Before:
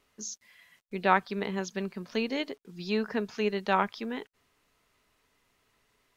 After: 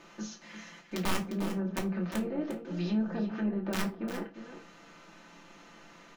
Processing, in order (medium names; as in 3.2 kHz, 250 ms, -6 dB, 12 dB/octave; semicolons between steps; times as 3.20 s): spectral levelling over time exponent 0.6; low-pass that closes with the level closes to 690 Hz, closed at -24.5 dBFS; peaking EQ 180 Hz +4 dB 2.3 oct; comb 5.9 ms, depth 76%; dynamic bell 990 Hz, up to -5 dB, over -46 dBFS, Q 2.8; integer overflow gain 16 dB; delay 352 ms -10.5 dB; reverberation RT60 0.25 s, pre-delay 3 ms, DRR 0.5 dB; trim -9 dB